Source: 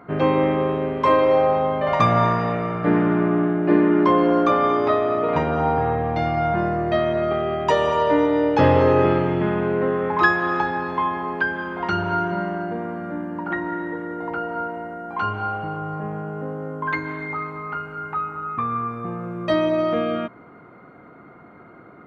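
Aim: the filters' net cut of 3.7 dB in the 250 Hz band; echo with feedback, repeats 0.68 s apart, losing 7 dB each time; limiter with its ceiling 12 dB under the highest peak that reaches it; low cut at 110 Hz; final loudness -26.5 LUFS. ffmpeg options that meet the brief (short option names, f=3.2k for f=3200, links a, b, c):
-af "highpass=110,equalizer=f=250:t=o:g=-5,alimiter=limit=-16.5dB:level=0:latency=1,aecho=1:1:680|1360|2040|2720|3400:0.447|0.201|0.0905|0.0407|0.0183,volume=-1.5dB"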